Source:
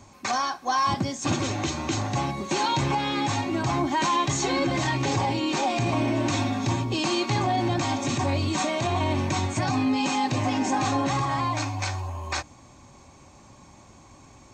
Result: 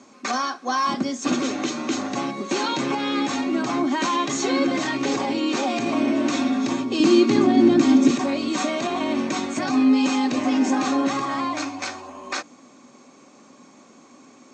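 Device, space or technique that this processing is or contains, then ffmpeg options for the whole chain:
television speaker: -filter_complex "[0:a]highpass=f=200:w=0.5412,highpass=f=200:w=1.3066,equalizer=f=250:t=q:w=4:g=8,equalizer=f=460:t=q:w=4:g=6,equalizer=f=890:t=q:w=4:g=-6,equalizer=f=1.3k:t=q:w=4:g=5,lowpass=f=8.1k:w=0.5412,lowpass=f=8.1k:w=1.3066,asettb=1/sr,asplit=3[a][b][c];[a]atrim=end=7.004[d];[b]atrim=start=7:end=8.11,asetpts=PTS-STARTPTS,afade=t=in:d=0.004:c=qsin,afade=t=out:st=1.106:d=0.004:c=qsin,lowshelf=f=470:t=q:w=1.5:g=7.5[e];[c]atrim=start=8.106[f];[d][e]acrossfade=d=0.004:c1=hsin:c2=qsin[g];[g][f]acrossfade=d=0.004:c1=qsin:c2=hsin,volume=1dB"

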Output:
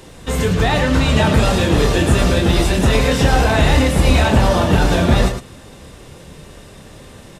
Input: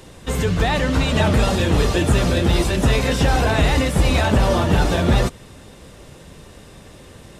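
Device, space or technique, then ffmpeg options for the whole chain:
slapback doubling: -filter_complex "[0:a]asplit=3[a][b][c];[b]adelay=27,volume=-7dB[d];[c]adelay=110,volume=-8dB[e];[a][d][e]amix=inputs=3:normalize=0,volume=2dB"

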